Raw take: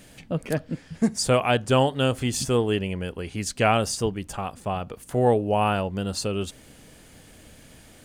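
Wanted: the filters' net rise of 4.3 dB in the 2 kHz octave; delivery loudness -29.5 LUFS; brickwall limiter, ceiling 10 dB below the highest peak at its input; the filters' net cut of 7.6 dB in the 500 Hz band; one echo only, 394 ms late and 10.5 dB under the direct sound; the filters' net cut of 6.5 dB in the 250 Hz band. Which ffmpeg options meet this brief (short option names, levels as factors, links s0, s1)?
-af "equalizer=f=250:t=o:g=-6.5,equalizer=f=500:t=o:g=-8,equalizer=f=2000:t=o:g=6.5,alimiter=limit=0.158:level=0:latency=1,aecho=1:1:394:0.299,volume=0.944"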